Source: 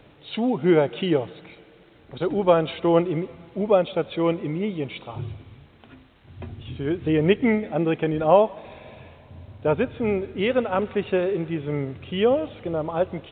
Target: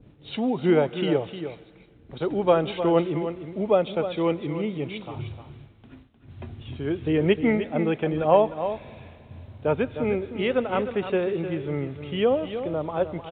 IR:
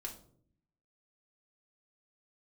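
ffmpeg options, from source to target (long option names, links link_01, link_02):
-filter_complex "[0:a]agate=range=-33dB:threshold=-44dB:ratio=3:detection=peak,acrossover=split=330[link_01][link_02];[link_01]acompressor=mode=upward:threshold=-37dB:ratio=2.5[link_03];[link_03][link_02]amix=inputs=2:normalize=0,aecho=1:1:306:0.316,volume=-2dB"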